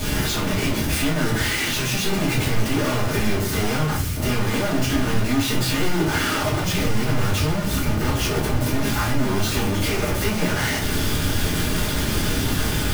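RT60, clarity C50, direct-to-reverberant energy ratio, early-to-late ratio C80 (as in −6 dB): 0.45 s, 7.0 dB, −7.5 dB, 12.5 dB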